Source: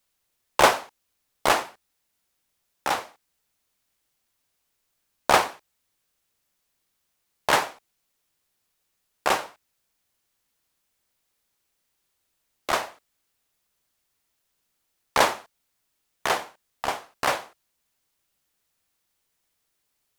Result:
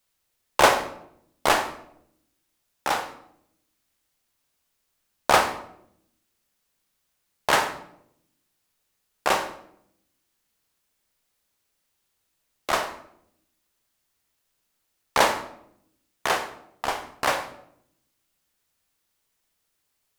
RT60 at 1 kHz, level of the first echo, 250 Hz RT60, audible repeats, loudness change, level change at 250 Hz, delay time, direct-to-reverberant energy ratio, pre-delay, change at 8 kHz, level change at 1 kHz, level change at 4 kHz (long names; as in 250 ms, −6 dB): 0.65 s, no echo audible, 1.1 s, no echo audible, +0.5 dB, +1.0 dB, no echo audible, 7.5 dB, 31 ms, +0.5 dB, +0.5 dB, +0.5 dB